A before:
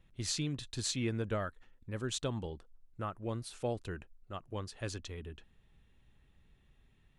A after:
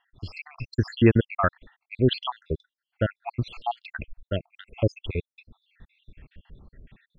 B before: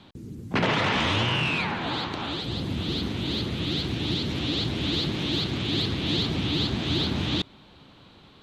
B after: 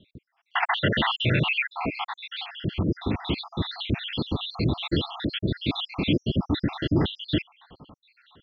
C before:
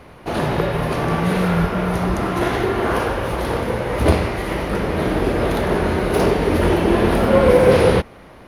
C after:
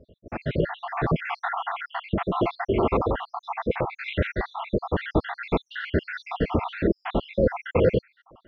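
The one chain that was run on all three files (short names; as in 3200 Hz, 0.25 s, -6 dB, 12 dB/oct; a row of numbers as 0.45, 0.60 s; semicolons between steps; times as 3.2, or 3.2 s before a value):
random spectral dropouts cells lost 74%; LPF 3400 Hz 24 dB/oct; AGC gain up to 9.5 dB; match loudness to -27 LUFS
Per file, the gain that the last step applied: +9.0, -3.0, -7.5 dB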